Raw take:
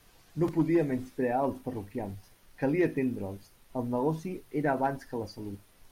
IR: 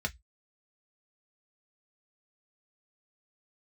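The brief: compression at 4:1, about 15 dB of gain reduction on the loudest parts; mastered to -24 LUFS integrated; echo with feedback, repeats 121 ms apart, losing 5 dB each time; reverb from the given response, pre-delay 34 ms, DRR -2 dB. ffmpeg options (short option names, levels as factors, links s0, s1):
-filter_complex "[0:a]acompressor=threshold=0.01:ratio=4,aecho=1:1:121|242|363|484|605|726|847:0.562|0.315|0.176|0.0988|0.0553|0.031|0.0173,asplit=2[s0][s1];[1:a]atrim=start_sample=2205,adelay=34[s2];[s1][s2]afir=irnorm=-1:irlink=0,volume=0.75[s3];[s0][s3]amix=inputs=2:normalize=0,volume=4.73"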